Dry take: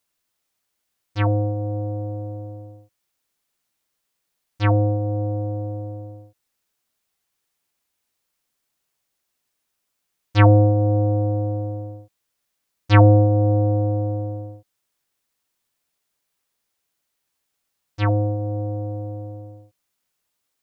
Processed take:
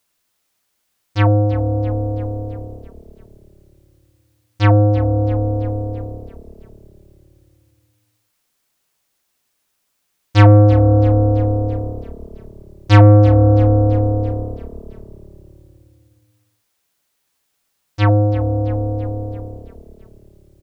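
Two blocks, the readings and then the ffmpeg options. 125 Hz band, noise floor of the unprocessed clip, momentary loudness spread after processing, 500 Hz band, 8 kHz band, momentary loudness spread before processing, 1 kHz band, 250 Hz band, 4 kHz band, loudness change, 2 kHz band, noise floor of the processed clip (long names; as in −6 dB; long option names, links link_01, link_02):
+6.0 dB, −77 dBFS, 19 LU, +5.5 dB, can't be measured, 20 LU, +4.5 dB, +6.0 dB, +5.5 dB, +5.5 dB, +4.0 dB, −70 dBFS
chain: -filter_complex "[0:a]acontrast=80,asplit=7[link_01][link_02][link_03][link_04][link_05][link_06][link_07];[link_02]adelay=333,afreqshift=-36,volume=-15.5dB[link_08];[link_03]adelay=666,afreqshift=-72,volume=-20.2dB[link_09];[link_04]adelay=999,afreqshift=-108,volume=-25dB[link_10];[link_05]adelay=1332,afreqshift=-144,volume=-29.7dB[link_11];[link_06]adelay=1665,afreqshift=-180,volume=-34.4dB[link_12];[link_07]adelay=1998,afreqshift=-216,volume=-39.2dB[link_13];[link_01][link_08][link_09][link_10][link_11][link_12][link_13]amix=inputs=7:normalize=0"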